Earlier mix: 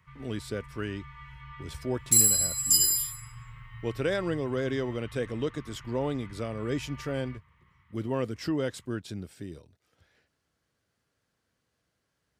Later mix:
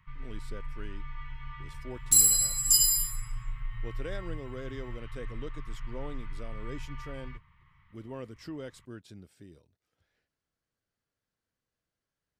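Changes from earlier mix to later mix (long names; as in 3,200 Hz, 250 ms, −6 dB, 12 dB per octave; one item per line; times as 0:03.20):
speech −11.0 dB
master: remove high-pass filter 50 Hz 24 dB per octave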